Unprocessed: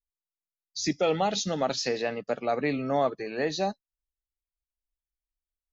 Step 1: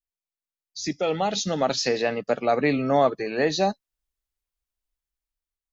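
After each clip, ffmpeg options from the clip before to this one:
ffmpeg -i in.wav -af "dynaudnorm=framelen=550:gausssize=5:maxgain=9dB,volume=-3dB" out.wav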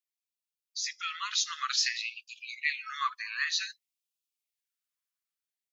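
ffmpeg -i in.wav -af "afftfilt=real='re*gte(b*sr/1024,930*pow(2400/930,0.5+0.5*sin(2*PI*0.54*pts/sr)))':imag='im*gte(b*sr/1024,930*pow(2400/930,0.5+0.5*sin(2*PI*0.54*pts/sr)))':win_size=1024:overlap=0.75" out.wav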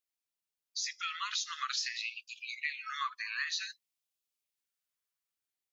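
ffmpeg -i in.wav -af "acompressor=threshold=-32dB:ratio=6" out.wav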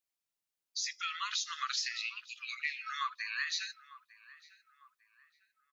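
ffmpeg -i in.wav -filter_complex "[0:a]asplit=2[link_01][link_02];[link_02]adelay=901,lowpass=frequency=1600:poles=1,volume=-16.5dB,asplit=2[link_03][link_04];[link_04]adelay=901,lowpass=frequency=1600:poles=1,volume=0.49,asplit=2[link_05][link_06];[link_06]adelay=901,lowpass=frequency=1600:poles=1,volume=0.49,asplit=2[link_07][link_08];[link_08]adelay=901,lowpass=frequency=1600:poles=1,volume=0.49[link_09];[link_01][link_03][link_05][link_07][link_09]amix=inputs=5:normalize=0" out.wav

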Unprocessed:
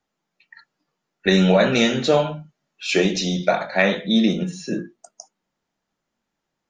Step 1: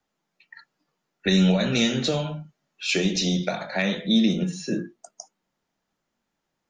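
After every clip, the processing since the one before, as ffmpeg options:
ffmpeg -i in.wav -filter_complex "[0:a]acrossover=split=240|3000[link_01][link_02][link_03];[link_02]acompressor=threshold=-26dB:ratio=6[link_04];[link_01][link_04][link_03]amix=inputs=3:normalize=0" out.wav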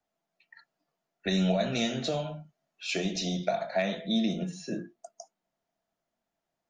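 ffmpeg -i in.wav -af "equalizer=frequency=670:width=6.3:gain=14.5,volume=-8dB" out.wav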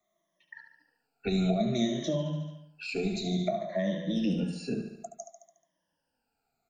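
ffmpeg -i in.wav -filter_complex "[0:a]afftfilt=real='re*pow(10,20/40*sin(2*PI*(1.2*log(max(b,1)*sr/1024/100)/log(2)-(-0.57)*(pts-256)/sr)))':imag='im*pow(10,20/40*sin(2*PI*(1.2*log(max(b,1)*sr/1024/100)/log(2)-(-0.57)*(pts-256)/sr)))':win_size=1024:overlap=0.75,asplit=2[link_01][link_02];[link_02]aecho=0:1:72|144|216|288|360|432:0.335|0.181|0.0977|0.0527|0.0285|0.0154[link_03];[link_01][link_03]amix=inputs=2:normalize=0,acrossover=split=440[link_04][link_05];[link_05]acompressor=threshold=-42dB:ratio=2.5[link_06];[link_04][link_06]amix=inputs=2:normalize=0" out.wav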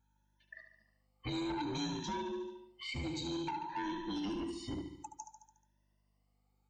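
ffmpeg -i in.wav -filter_complex "[0:a]afftfilt=real='real(if(between(b,1,1008),(2*floor((b-1)/24)+1)*24-b,b),0)':imag='imag(if(between(b,1,1008),(2*floor((b-1)/24)+1)*24-b,b),0)*if(between(b,1,1008),-1,1)':win_size=2048:overlap=0.75,acrossover=split=1700[link_01][link_02];[link_01]asoftclip=type=tanh:threshold=-30.5dB[link_03];[link_03][link_02]amix=inputs=2:normalize=0,aeval=exprs='val(0)+0.000316*(sin(2*PI*50*n/s)+sin(2*PI*2*50*n/s)/2+sin(2*PI*3*50*n/s)/3+sin(2*PI*4*50*n/s)/4+sin(2*PI*5*50*n/s)/5)':channel_layout=same,volume=-4.5dB" out.wav

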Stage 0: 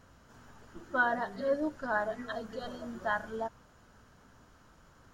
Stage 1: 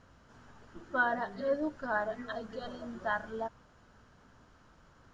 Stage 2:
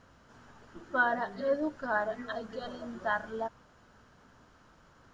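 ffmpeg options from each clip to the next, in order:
ffmpeg -i in.wav -af "lowpass=6000,volume=-1dB" out.wav
ffmpeg -i in.wav -af "lowshelf=frequency=120:gain=-5,volume=2dB" out.wav

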